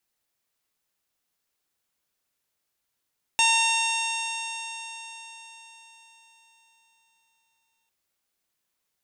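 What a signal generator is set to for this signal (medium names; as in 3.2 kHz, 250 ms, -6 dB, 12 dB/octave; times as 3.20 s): stretched partials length 4.50 s, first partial 908 Hz, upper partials -11/2.5/-2/-15.5/-6/-5.5/-11/-4/-11.5 dB, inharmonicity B 0.00072, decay 4.62 s, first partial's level -23 dB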